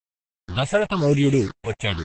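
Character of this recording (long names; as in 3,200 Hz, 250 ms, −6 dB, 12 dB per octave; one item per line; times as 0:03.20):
a quantiser's noise floor 6 bits, dither none
phaser sweep stages 6, 1 Hz, lowest notch 310–1,400 Hz
Opus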